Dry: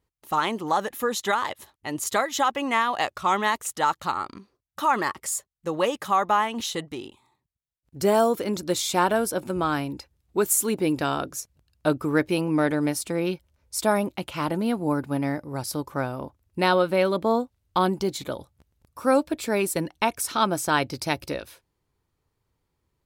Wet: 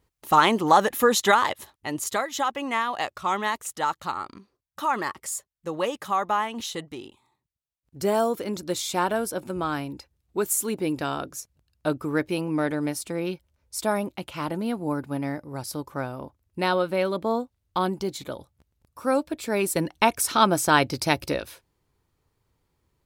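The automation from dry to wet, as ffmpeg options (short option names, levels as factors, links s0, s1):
-af "volume=4.47,afade=t=out:st=1.13:d=1.06:silence=0.334965,afade=t=in:st=19.42:d=0.57:silence=0.473151"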